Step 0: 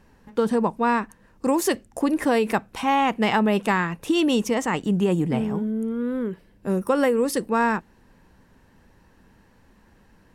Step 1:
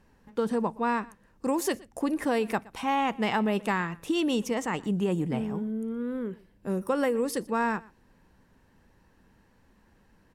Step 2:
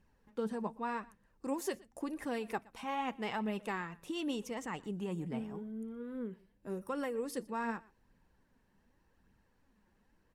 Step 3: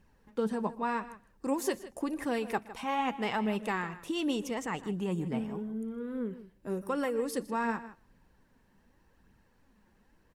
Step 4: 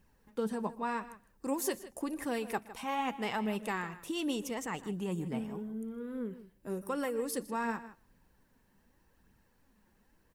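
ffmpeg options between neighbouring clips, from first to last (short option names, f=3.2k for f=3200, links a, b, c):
-af "aecho=1:1:120:0.075,volume=-6dB"
-af "flanger=delay=0.3:depth=5.3:regen=53:speed=0.86:shape=triangular,volume=-6dB"
-filter_complex "[0:a]asplit=2[a][b];[b]adelay=157.4,volume=-15dB,highshelf=f=4k:g=-3.54[c];[a][c]amix=inputs=2:normalize=0,volume=5.5dB"
-af "highshelf=f=8.4k:g=11,volume=-3dB"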